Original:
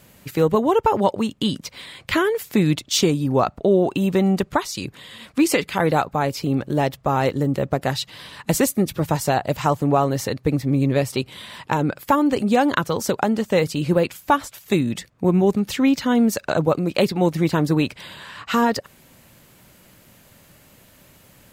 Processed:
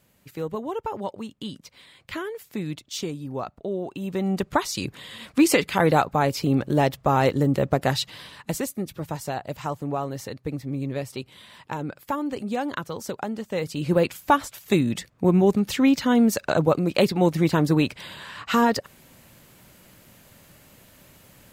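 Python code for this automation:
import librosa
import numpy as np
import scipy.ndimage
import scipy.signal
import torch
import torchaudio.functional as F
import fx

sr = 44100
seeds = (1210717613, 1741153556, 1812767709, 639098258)

y = fx.gain(x, sr, db=fx.line((3.94, -12.5), (4.65, 0.0), (8.07, 0.0), (8.62, -10.0), (13.52, -10.0), (14.02, -1.0)))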